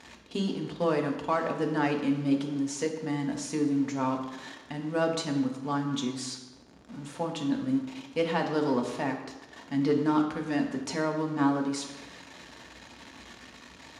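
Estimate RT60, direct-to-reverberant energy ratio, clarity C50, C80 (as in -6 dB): 1.1 s, 2.0 dB, 7.0 dB, 9.0 dB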